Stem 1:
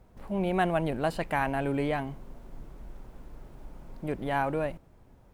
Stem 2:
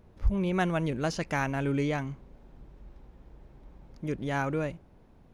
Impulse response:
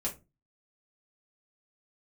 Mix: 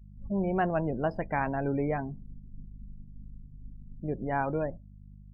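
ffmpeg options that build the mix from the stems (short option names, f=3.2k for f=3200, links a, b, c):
-filter_complex "[0:a]aeval=exprs='val(0)+0.00794*(sin(2*PI*50*n/s)+sin(2*PI*2*50*n/s)/2+sin(2*PI*3*50*n/s)/3+sin(2*PI*4*50*n/s)/4+sin(2*PI*5*50*n/s)/5)':c=same,volume=-4.5dB,asplit=3[a][b][c];[b]volume=-15dB[d];[1:a]volume=-11dB[e];[c]apad=whole_len=235087[f];[e][f]sidechaingate=range=-33dB:threshold=-42dB:ratio=16:detection=peak[g];[2:a]atrim=start_sample=2205[h];[d][h]afir=irnorm=-1:irlink=0[i];[a][g][i]amix=inputs=3:normalize=0,afftdn=nr=35:nf=-38"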